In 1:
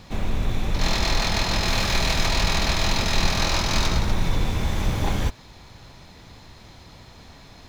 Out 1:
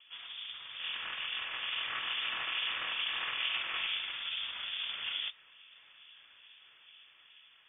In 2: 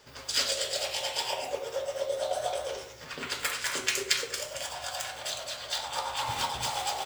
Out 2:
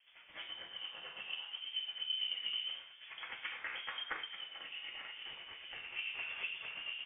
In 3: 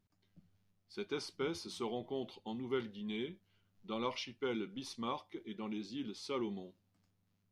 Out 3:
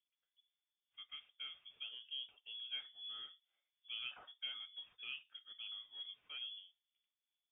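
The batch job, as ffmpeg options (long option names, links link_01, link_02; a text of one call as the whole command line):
ffmpeg -i in.wav -filter_complex "[0:a]aeval=exprs='if(lt(val(0),0),0.708*val(0),val(0))':channel_layout=same,acrossover=split=170|1100|2800[link_01][link_02][link_03][link_04];[link_01]alimiter=limit=-21dB:level=0:latency=1:release=315[link_05];[link_05][link_02][link_03][link_04]amix=inputs=4:normalize=0,acrossover=split=160 2400:gain=0.112 1 0.0891[link_06][link_07][link_08];[link_06][link_07][link_08]amix=inputs=3:normalize=0,dynaudnorm=framelen=690:gausssize=5:maxgain=4dB,acrossover=split=1300[link_09][link_10];[link_09]aeval=exprs='val(0)*(1-0.5/2+0.5/2*cos(2*PI*2.3*n/s))':channel_layout=same[link_11];[link_10]aeval=exprs='val(0)*(1-0.5/2-0.5/2*cos(2*PI*2.3*n/s))':channel_layout=same[link_12];[link_11][link_12]amix=inputs=2:normalize=0,lowpass=frequency=3100:width_type=q:width=0.5098,lowpass=frequency=3100:width_type=q:width=0.6013,lowpass=frequency=3100:width_type=q:width=0.9,lowpass=frequency=3100:width_type=q:width=2.563,afreqshift=-3600,volume=-7dB" out.wav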